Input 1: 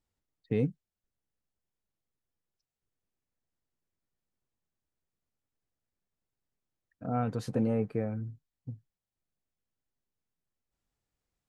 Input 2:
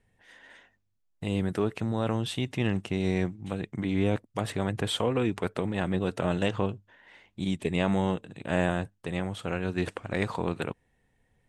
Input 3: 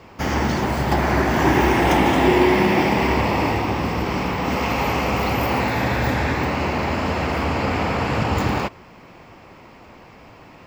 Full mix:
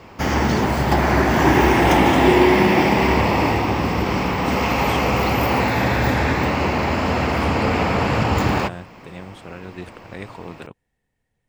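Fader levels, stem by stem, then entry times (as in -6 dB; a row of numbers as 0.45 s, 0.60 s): 0.0 dB, -5.5 dB, +2.0 dB; 0.00 s, 0.00 s, 0.00 s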